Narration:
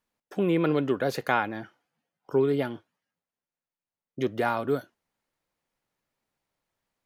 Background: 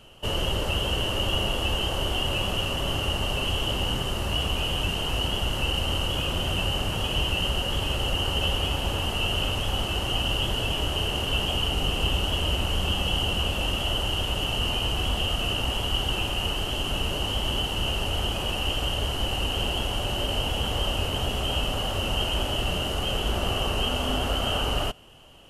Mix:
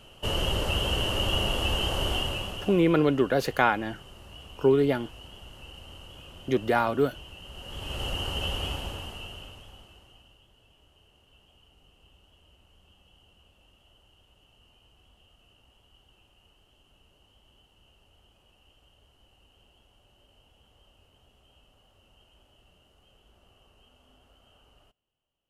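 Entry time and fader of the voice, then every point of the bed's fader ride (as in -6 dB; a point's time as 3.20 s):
2.30 s, +2.5 dB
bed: 2.15 s -1 dB
3.04 s -20 dB
7.44 s -20 dB
8.02 s -5.5 dB
8.70 s -5.5 dB
10.44 s -35 dB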